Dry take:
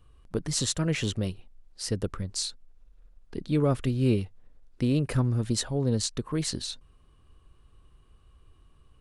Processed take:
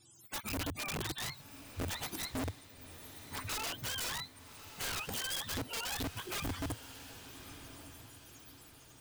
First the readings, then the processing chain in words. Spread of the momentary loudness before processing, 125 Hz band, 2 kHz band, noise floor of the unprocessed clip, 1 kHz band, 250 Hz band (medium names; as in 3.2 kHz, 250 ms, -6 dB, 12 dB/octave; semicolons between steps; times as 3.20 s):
11 LU, -16.5 dB, +1.5 dB, -59 dBFS, -0.5 dB, -15.0 dB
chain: spectrum inverted on a logarithmic axis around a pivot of 620 Hz; treble shelf 6.6 kHz +5.5 dB; compression 5:1, threshold -35 dBFS, peak gain reduction 13 dB; integer overflow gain 32.5 dB; on a send: echo that smears into a reverb 1173 ms, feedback 43%, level -12.5 dB